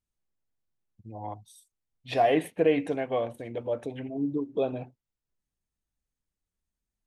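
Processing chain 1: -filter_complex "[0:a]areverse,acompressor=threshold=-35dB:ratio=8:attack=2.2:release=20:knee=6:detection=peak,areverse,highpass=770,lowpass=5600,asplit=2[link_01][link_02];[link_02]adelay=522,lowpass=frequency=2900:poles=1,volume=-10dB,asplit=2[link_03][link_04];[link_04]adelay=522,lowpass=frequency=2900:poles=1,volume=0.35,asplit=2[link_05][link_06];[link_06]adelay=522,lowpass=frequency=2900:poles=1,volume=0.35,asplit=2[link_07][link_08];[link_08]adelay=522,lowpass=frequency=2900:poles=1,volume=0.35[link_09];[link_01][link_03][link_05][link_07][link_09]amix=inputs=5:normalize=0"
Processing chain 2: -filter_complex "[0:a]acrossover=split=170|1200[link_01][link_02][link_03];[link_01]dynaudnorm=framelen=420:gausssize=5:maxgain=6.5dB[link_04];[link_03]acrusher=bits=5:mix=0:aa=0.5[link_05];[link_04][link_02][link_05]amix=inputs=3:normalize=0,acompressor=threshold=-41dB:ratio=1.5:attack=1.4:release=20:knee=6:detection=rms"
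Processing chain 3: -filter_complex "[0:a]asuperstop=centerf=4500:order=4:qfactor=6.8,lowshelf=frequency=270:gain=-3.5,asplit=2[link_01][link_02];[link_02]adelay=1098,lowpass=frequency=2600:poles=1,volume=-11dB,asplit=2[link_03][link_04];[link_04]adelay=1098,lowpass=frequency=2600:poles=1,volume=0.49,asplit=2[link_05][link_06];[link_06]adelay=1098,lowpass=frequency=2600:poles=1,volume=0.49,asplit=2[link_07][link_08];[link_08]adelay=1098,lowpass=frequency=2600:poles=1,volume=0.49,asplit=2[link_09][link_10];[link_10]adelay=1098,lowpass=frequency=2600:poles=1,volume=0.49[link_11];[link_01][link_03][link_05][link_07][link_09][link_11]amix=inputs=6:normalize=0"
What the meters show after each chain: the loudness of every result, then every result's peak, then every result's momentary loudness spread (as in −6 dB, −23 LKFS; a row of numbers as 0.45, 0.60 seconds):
−47.0, −36.0, −30.5 LKFS; −29.5, −20.5, −12.0 dBFS; 16, 15, 22 LU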